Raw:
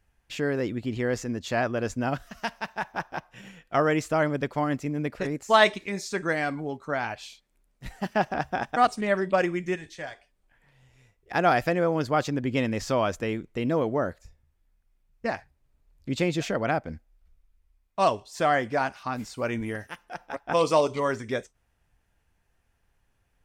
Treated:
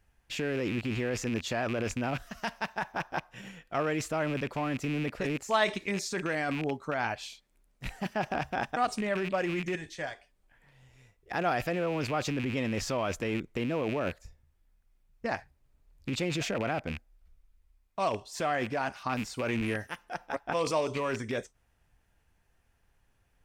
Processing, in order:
loose part that buzzes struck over −38 dBFS, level −27 dBFS
in parallel at −0.5 dB: compressor whose output falls as the input rises −30 dBFS, ratio −0.5
on the sum: level −8 dB

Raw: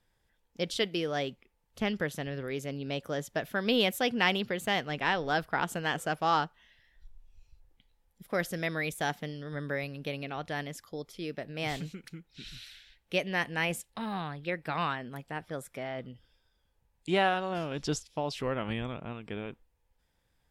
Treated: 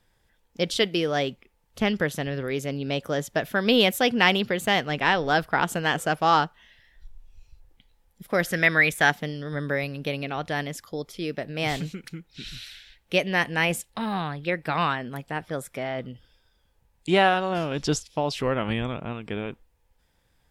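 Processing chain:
0:08.47–0:09.10: parametric band 1,800 Hz +9.5 dB 1.2 octaves
level +7 dB

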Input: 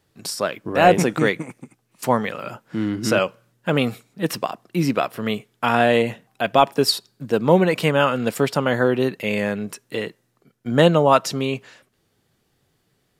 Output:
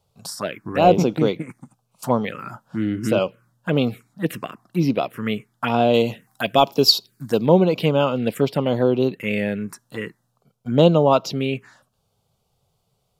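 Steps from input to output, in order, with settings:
high-shelf EQ 3,800 Hz −5 dB, from 0:05.94 +7.5 dB, from 0:07.46 −4.5 dB
phaser swept by the level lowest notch 300 Hz, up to 1,800 Hz, full sweep at −15.5 dBFS
level +1.5 dB

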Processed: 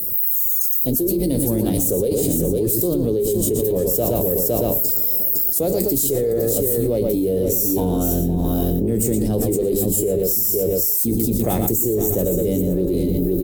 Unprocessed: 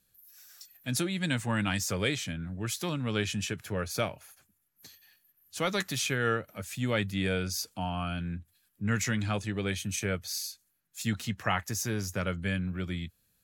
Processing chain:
sub-octave generator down 2 octaves, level −5 dB
single-tap delay 510 ms −10.5 dB
in parallel at −3.5 dB: dead-zone distortion −41 dBFS
on the sum: low-shelf EQ 120 Hz −7 dB
mains-hum notches 50/100/150/200/250/300 Hz
slap from a distant wall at 20 metres, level −8 dB
formants moved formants +3 semitones
drawn EQ curve 180 Hz 0 dB, 420 Hz +8 dB, 1,500 Hz −29 dB, 2,900 Hz −24 dB, 15,000 Hz +14 dB
on a send at −12 dB: convolution reverb, pre-delay 3 ms
on the sum: envelope flattener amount 100%
level −2 dB

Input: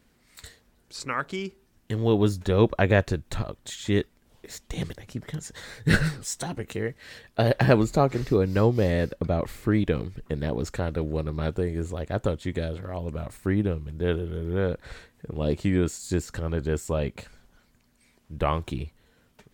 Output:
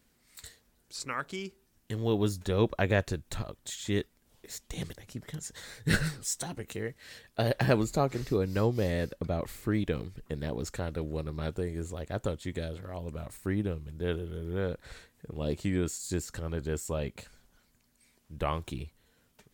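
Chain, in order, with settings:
high-shelf EQ 4,700 Hz +8.5 dB
level −6.5 dB

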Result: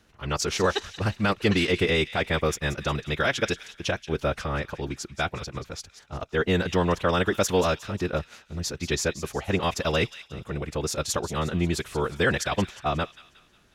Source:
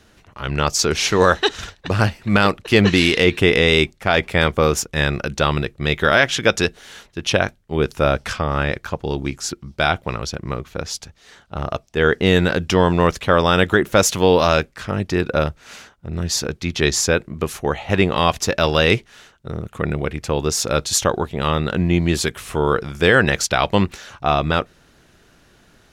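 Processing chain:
phase-vocoder stretch with locked phases 0.53×
delay with a high-pass on its return 180 ms, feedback 46%, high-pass 2,300 Hz, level −12 dB
level −7 dB

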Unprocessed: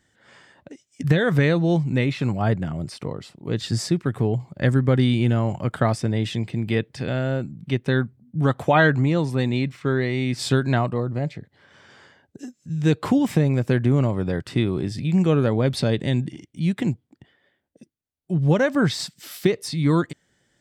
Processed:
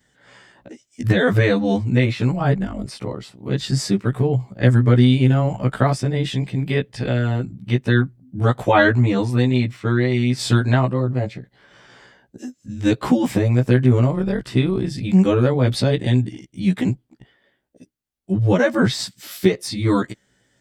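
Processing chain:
every overlapping window played backwards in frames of 32 ms
level +6 dB

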